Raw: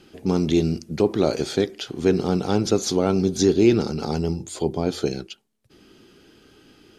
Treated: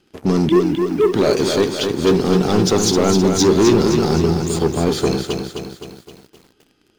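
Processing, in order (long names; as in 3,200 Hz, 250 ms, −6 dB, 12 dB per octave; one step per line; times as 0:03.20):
0:00.49–0:01.13: three sine waves on the formant tracks
leveller curve on the samples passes 3
feedback echo at a low word length 260 ms, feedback 55%, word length 7 bits, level −5.5 dB
level −3 dB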